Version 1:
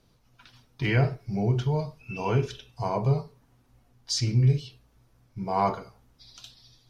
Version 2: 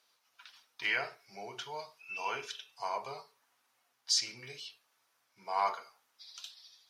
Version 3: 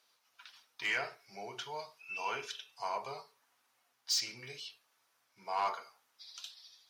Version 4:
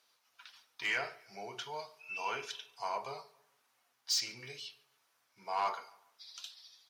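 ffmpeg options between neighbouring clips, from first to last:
-af "highpass=1.1k"
-af "asoftclip=type=tanh:threshold=-25dB"
-filter_complex "[0:a]asplit=2[a][b];[b]adelay=143,lowpass=f=3.8k:p=1,volume=-22.5dB,asplit=2[c][d];[d]adelay=143,lowpass=f=3.8k:p=1,volume=0.41,asplit=2[e][f];[f]adelay=143,lowpass=f=3.8k:p=1,volume=0.41[g];[a][c][e][g]amix=inputs=4:normalize=0"

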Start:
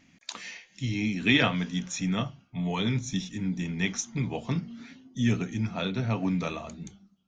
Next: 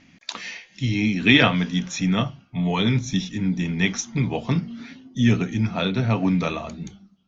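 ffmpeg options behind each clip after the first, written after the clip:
-af "lowpass=f=6k:w=0.5412,lowpass=f=6k:w=1.3066,volume=7dB"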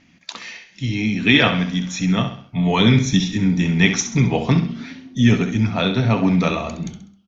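-filter_complex "[0:a]dynaudnorm=f=580:g=3:m=11.5dB,asplit=2[a][b];[b]aecho=0:1:66|132|198|264:0.335|0.137|0.0563|0.0231[c];[a][c]amix=inputs=2:normalize=0,volume=-1dB"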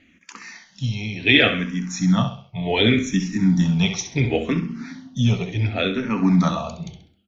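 -filter_complex "[0:a]tremolo=f=1.4:d=0.32,asplit=2[a][b];[b]afreqshift=-0.69[c];[a][c]amix=inputs=2:normalize=1,volume=1.5dB"

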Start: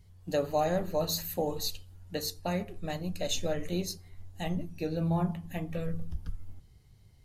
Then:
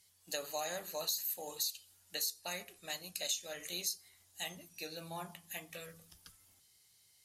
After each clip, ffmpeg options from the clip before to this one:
-af "lowpass=12k,aderivative,acompressor=threshold=-43dB:ratio=16,volume=10dB"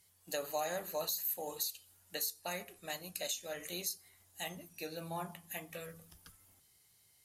-af "equalizer=f=4.8k:w=0.55:g=-8,volume=4dB"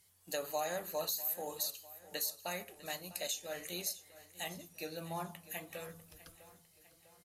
-af "aecho=1:1:650|1300|1950|2600|3250:0.133|0.0707|0.0375|0.0199|0.0105"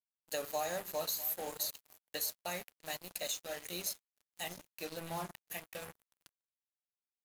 -af "acrusher=bits=6:mix=0:aa=0.5"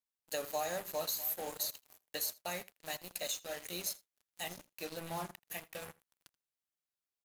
-af "aecho=1:1:81:0.0708"

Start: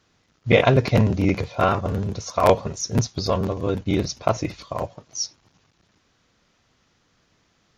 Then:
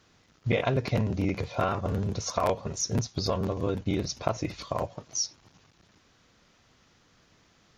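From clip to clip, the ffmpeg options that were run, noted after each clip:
-af "acompressor=threshold=-29dB:ratio=3,volume=2dB"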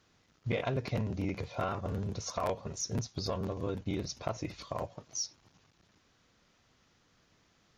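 -af "asoftclip=type=tanh:threshold=-14dB,volume=-6dB"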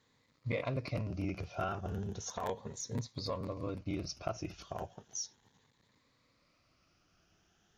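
-af "afftfilt=real='re*pow(10,9/40*sin(2*PI*(1*log(max(b,1)*sr/1024/100)/log(2)-(0.35)*(pts-256)/sr)))':imag='im*pow(10,9/40*sin(2*PI*(1*log(max(b,1)*sr/1024/100)/log(2)-(0.35)*(pts-256)/sr)))':win_size=1024:overlap=0.75,volume=-4.5dB"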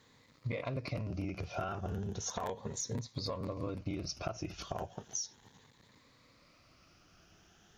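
-af "acompressor=threshold=-43dB:ratio=6,volume=8dB"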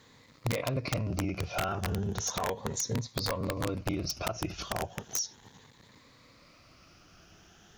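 -af "aeval=exprs='(mod(26.6*val(0)+1,2)-1)/26.6':c=same,volume=6dB"

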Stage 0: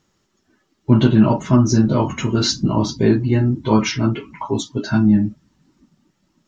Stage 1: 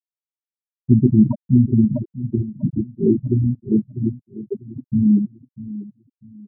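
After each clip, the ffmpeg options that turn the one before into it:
-af "afwtdn=0.126,afftfilt=real='re*gte(hypot(re,im),1)':imag='im*gte(hypot(re,im),1)':win_size=1024:overlap=0.75,aecho=1:1:646|1292|1938:0.158|0.046|0.0133"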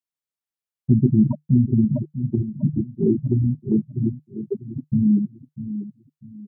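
-filter_complex "[0:a]equalizer=f=150:t=o:w=0.23:g=7.5,asplit=2[a][b];[b]acompressor=threshold=-22dB:ratio=6,volume=2dB[c];[a][c]amix=inputs=2:normalize=0,volume=-6dB"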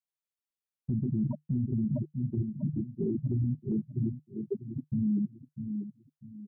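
-af "alimiter=limit=-17dB:level=0:latency=1:release=33,volume=-6dB"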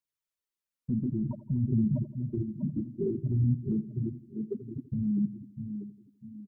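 -af "aphaser=in_gain=1:out_gain=1:delay=4.4:decay=0.4:speed=0.56:type=triangular,asuperstop=centerf=750:order=4:qfactor=4.1,aecho=1:1:83|166|249|332|415:0.15|0.0838|0.0469|0.0263|0.0147"

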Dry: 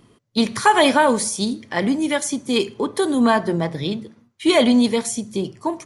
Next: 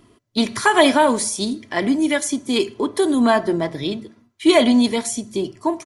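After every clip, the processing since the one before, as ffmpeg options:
-af "aecho=1:1:3:0.44"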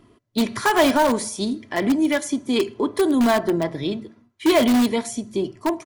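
-filter_complex "[0:a]highshelf=f=3.5k:g=-7.5,asplit=2[a][b];[b]aeval=exprs='(mod(3.55*val(0)+1,2)-1)/3.55':c=same,volume=-9.5dB[c];[a][c]amix=inputs=2:normalize=0,volume=-3dB"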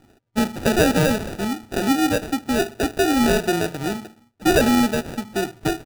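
-af "acrusher=samples=41:mix=1:aa=0.000001"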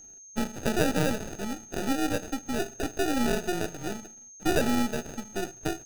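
-af "aeval=exprs='if(lt(val(0),0),0.251*val(0),val(0))':c=same,aeval=exprs='val(0)+0.00891*sin(2*PI*6400*n/s)':c=same,volume=-5.5dB"

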